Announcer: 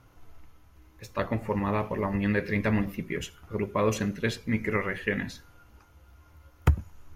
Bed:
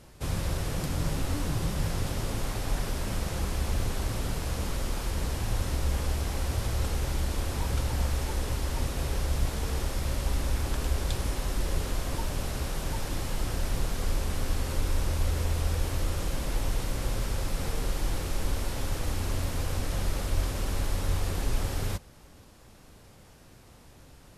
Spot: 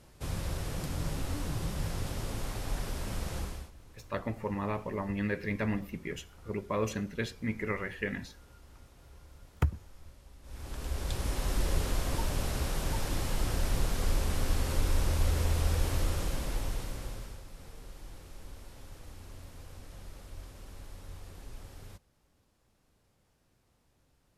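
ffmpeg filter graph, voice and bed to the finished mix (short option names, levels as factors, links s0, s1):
-filter_complex "[0:a]adelay=2950,volume=0.501[s0];[1:a]volume=10.6,afade=t=out:st=3.37:d=0.34:silence=0.0891251,afade=t=in:st=10.42:d=1.12:silence=0.0530884,afade=t=out:st=15.97:d=1.46:silence=0.133352[s1];[s0][s1]amix=inputs=2:normalize=0"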